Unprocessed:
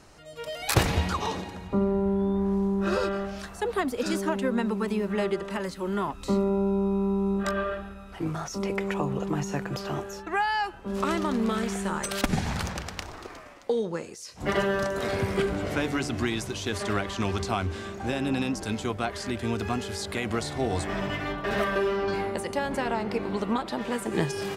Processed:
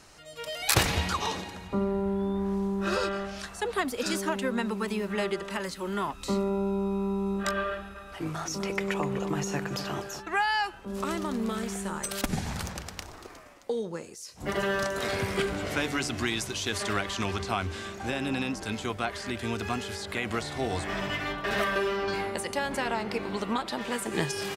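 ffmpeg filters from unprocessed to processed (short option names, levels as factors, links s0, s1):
-filter_complex "[0:a]asettb=1/sr,asplit=3[s0][s1][s2];[s0]atrim=end=2.964[s3];[s1]atrim=start=2.96:end=3.81,asetpts=PTS-STARTPTS,afade=t=in:d=0.004:c=qsin,afade=t=out:st=0.846:d=0.004:c=qsin,lowpass=12000[s4];[s2]atrim=start=3.806[s5];[s3][s4]acrossfade=d=0.004:c1=hsin:c2=qsin[s6];[s6][s5]acrossfade=d=0.004:c1=qsin:c2=hsin,asplit=3[s7][s8][s9];[s7]afade=t=out:st=7.94:d=0.02[s10];[s8]asplit=2[s11][s12];[s12]adelay=249,lowpass=f=2000:p=1,volume=0.335,asplit=2[s13][s14];[s14]adelay=249,lowpass=f=2000:p=1,volume=0.36,asplit=2[s15][s16];[s16]adelay=249,lowpass=f=2000:p=1,volume=0.36,asplit=2[s17][s18];[s18]adelay=249,lowpass=f=2000:p=1,volume=0.36[s19];[s11][s13][s15][s17][s19]amix=inputs=5:normalize=0,afade=t=in:st=7.94:d=0.02,afade=t=out:st=10.19:d=0.02[s20];[s9]afade=t=in:st=10.19:d=0.02[s21];[s10][s20][s21]amix=inputs=3:normalize=0,asettb=1/sr,asplit=3[s22][s23][s24];[s22]atrim=end=10.854[s25];[s23]atrim=start=10.85:end=14.63,asetpts=PTS-STARTPTS,afade=t=in:d=0.004:c=qsin,afade=t=out:st=3.776:d=0.004:c=qsin,equalizer=f=2700:w=0.35:g=-7[s26];[s24]atrim=start=14.626[s27];[s25][s26]acrossfade=d=0.004:c1=hsin:c2=qsin[s28];[s28][s27]acrossfade=d=0.004:c1=qsin:c2=hsin,asettb=1/sr,asplit=3[s29][s30][s31];[s29]atrim=end=17.244[s32];[s30]atrim=start=17.24:end=20.97,asetpts=PTS-STARTPTS,afade=t=in:d=0.004:c=qsin,afade=t=out:st=3.726:d=0.004:c=qsin,acrossover=split=3100[s33][s34];[s34]acompressor=threshold=0.00708:ratio=4:attack=1:release=60[s35];[s33][s35]amix=inputs=2:normalize=0[s36];[s31]atrim=start=20.966[s37];[s32][s36]acrossfade=d=0.004:c1=hsin:c2=qsin[s38];[s38][s37]acrossfade=d=0.004:c1=qsin:c2=hsin,tiltshelf=f=1200:g=-4"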